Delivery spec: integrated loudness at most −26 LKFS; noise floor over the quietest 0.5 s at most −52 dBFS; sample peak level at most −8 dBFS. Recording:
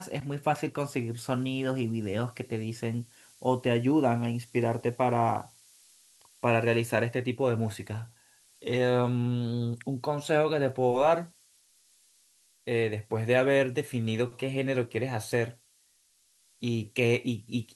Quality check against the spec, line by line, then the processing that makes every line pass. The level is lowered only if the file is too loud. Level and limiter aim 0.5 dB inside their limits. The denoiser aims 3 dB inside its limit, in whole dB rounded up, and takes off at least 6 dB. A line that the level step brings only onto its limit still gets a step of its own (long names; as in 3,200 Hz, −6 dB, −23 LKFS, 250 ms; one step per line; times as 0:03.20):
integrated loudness −29.0 LKFS: in spec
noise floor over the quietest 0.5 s −67 dBFS: in spec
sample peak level −11.5 dBFS: in spec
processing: no processing needed